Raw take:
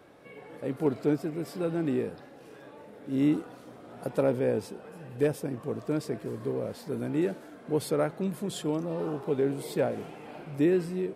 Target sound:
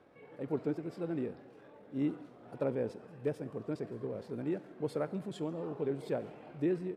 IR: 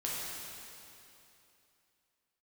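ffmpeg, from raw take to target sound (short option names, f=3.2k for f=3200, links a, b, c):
-filter_complex "[0:a]atempo=1.6,aemphasis=mode=reproduction:type=50fm,asplit=2[a][b];[1:a]atrim=start_sample=2205,afade=t=out:st=0.31:d=0.01,atrim=end_sample=14112[c];[b][c]afir=irnorm=-1:irlink=0,volume=-17.5dB[d];[a][d]amix=inputs=2:normalize=0,volume=-8dB"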